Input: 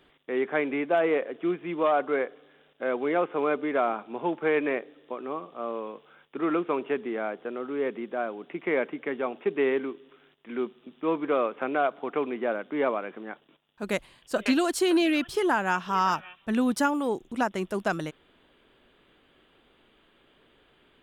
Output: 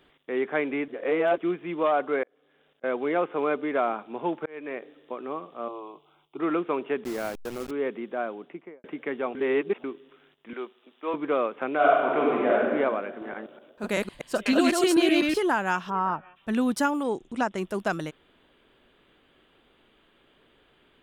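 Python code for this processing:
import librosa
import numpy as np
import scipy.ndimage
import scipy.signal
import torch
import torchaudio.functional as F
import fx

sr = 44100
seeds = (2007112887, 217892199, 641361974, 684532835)

y = fx.auto_swell(x, sr, attack_ms=654.0, at=(2.23, 2.84))
y = fx.auto_swell(y, sr, attack_ms=563.0, at=(4.23, 4.82))
y = fx.fixed_phaser(y, sr, hz=340.0, stages=8, at=(5.68, 6.4))
y = fx.delta_hold(y, sr, step_db=-34.5, at=(7.04, 7.71))
y = fx.studio_fade_out(y, sr, start_s=8.32, length_s=0.52)
y = fx.highpass(y, sr, hz=490.0, slope=12, at=(10.53, 11.14))
y = fx.reverb_throw(y, sr, start_s=11.75, length_s=0.82, rt60_s=1.7, drr_db=-5.0)
y = fx.reverse_delay(y, sr, ms=125, wet_db=-0.5, at=(13.09, 15.38))
y = fx.lowpass(y, sr, hz=1200.0, slope=12, at=(15.89, 16.35), fade=0.02)
y = fx.steep_lowpass(y, sr, hz=10000.0, slope=96, at=(17.03, 17.56), fade=0.02)
y = fx.edit(y, sr, fx.reverse_span(start_s=0.88, length_s=0.5),
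    fx.reverse_span(start_s=9.35, length_s=0.49), tone=tone)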